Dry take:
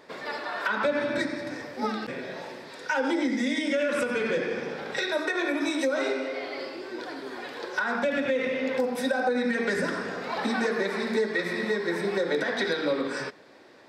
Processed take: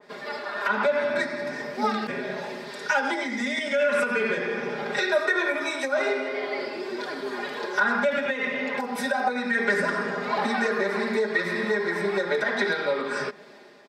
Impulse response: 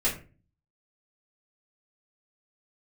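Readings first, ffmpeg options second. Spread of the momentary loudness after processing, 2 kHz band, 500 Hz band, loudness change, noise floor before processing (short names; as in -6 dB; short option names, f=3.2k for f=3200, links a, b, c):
9 LU, +4.5 dB, +1.5 dB, +2.5 dB, -44 dBFS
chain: -filter_complex "[0:a]acrossover=split=580|1000[a][b][c];[a]acompressor=threshold=-36dB:ratio=6[d];[d][b][c]amix=inputs=3:normalize=0,aecho=1:1:4.9:0.95,dynaudnorm=f=450:g=3:m=6dB,highpass=47,adynamicequalizer=threshold=0.0178:dfrequency=2600:dqfactor=0.7:tfrequency=2600:tqfactor=0.7:attack=5:release=100:ratio=0.375:range=3.5:mode=cutabove:tftype=highshelf,volume=-3dB"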